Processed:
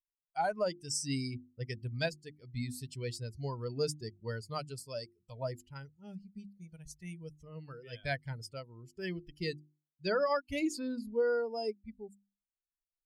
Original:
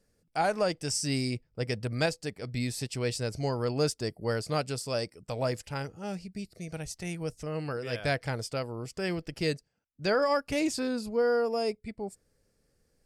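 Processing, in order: per-bin expansion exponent 2; notches 50/100/150/200/250/300/350 Hz; gain -1.5 dB

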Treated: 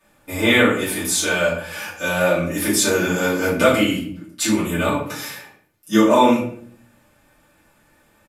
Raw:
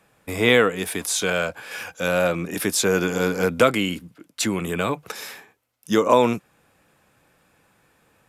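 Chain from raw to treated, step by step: high shelf 6600 Hz +5 dB; comb 3.4 ms, depth 34%; shoebox room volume 69 m³, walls mixed, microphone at 2.6 m; gain -9 dB

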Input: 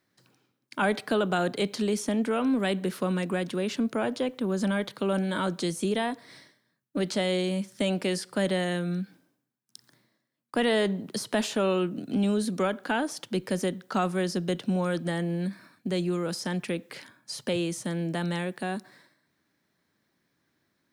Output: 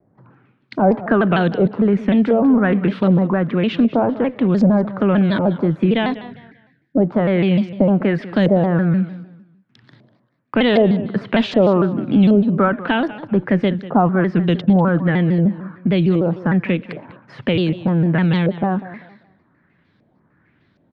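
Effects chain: spectral repair 6.31–6.87, 260–1400 Hz after; LFO low-pass saw up 1.3 Hz 550–4800 Hz; in parallel at -1 dB: compressor, threshold -37 dBFS, peak gain reduction 18 dB; on the sum: tone controls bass +9 dB, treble -15 dB; on a send: feedback echo 0.196 s, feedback 28%, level -16 dB; on the sum: shaped vibrato saw down 6.6 Hz, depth 160 cents; gain +5.5 dB

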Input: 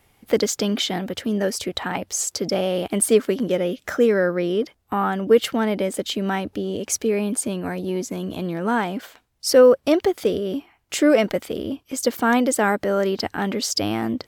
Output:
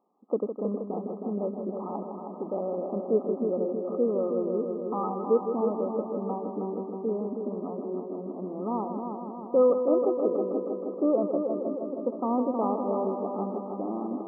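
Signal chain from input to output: brick-wall FIR band-pass 180–1300 Hz; multi-head echo 0.158 s, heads first and second, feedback 68%, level -8.5 dB; gain -8.5 dB

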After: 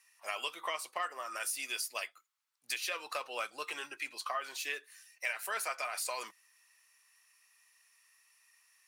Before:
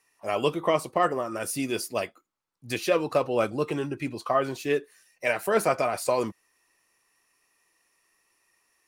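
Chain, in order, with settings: HPF 1500 Hz 12 dB/oct; compressor 3:1, threshold -38 dBFS, peak gain reduction 10 dB; gain +3 dB

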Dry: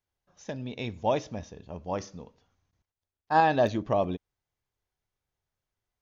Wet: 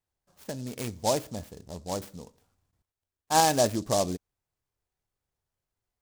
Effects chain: 1.61–2.02 median filter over 25 samples; noise-modulated delay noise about 5600 Hz, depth 0.085 ms

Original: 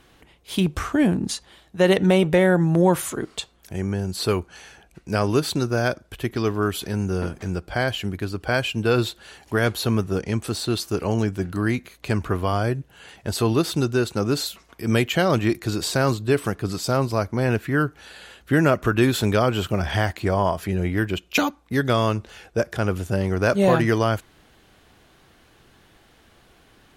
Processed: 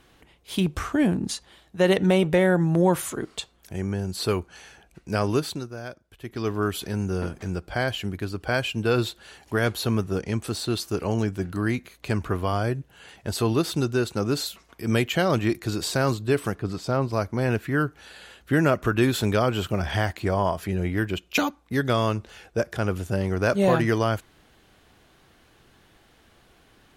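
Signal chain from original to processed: 5.33–6.55 dip -12 dB, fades 0.36 s linear; 16.59–17.13 LPF 2500 Hz 6 dB/oct; gain -2.5 dB

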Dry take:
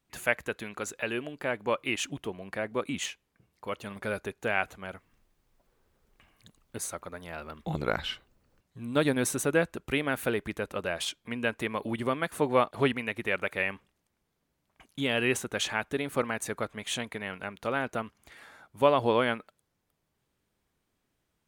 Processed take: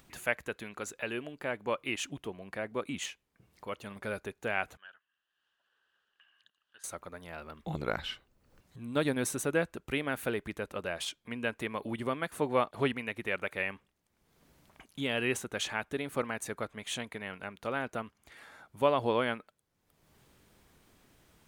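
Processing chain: upward compressor, threshold -43 dBFS; 4.77–6.84 double band-pass 2200 Hz, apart 0.83 oct; gain -4 dB

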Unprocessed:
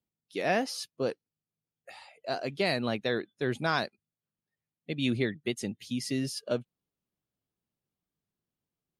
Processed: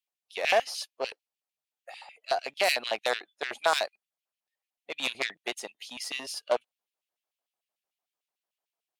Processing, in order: added harmonics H 6 -8 dB, 8 -11 dB, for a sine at -13.5 dBFS; LFO high-pass square 6.7 Hz 700–2600 Hz

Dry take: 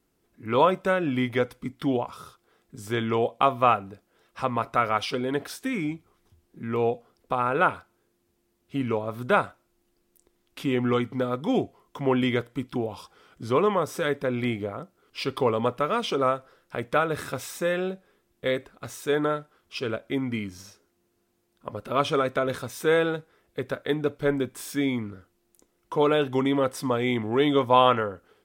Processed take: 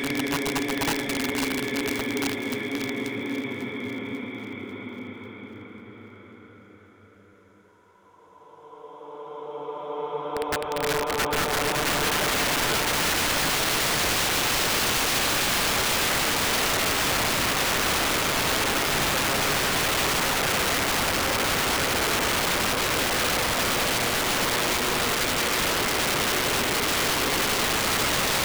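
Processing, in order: three-band isolator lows -12 dB, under 370 Hz, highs -21 dB, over 3800 Hz; Paulstretch 11×, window 1.00 s, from 24.78; wrapped overs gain 26 dB; split-band echo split 1200 Hz, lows 0.123 s, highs 0.544 s, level -12 dB; gain +6.5 dB

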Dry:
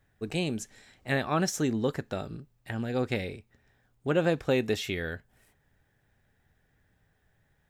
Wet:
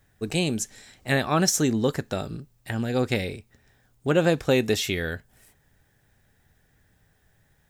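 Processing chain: tone controls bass +1 dB, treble +7 dB; gain +4.5 dB

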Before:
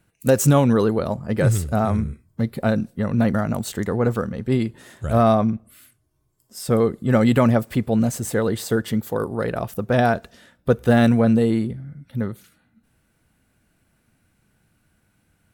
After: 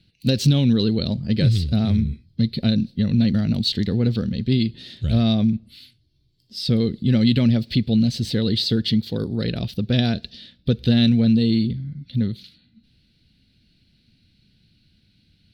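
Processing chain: EQ curve 230 Hz 0 dB, 1100 Hz -23 dB, 4300 Hz +15 dB, 7000 Hz -15 dB; compressor 2:1, threshold -21 dBFS, peak gain reduction 6 dB; high shelf 7700 Hz -4 dB; gain +5 dB

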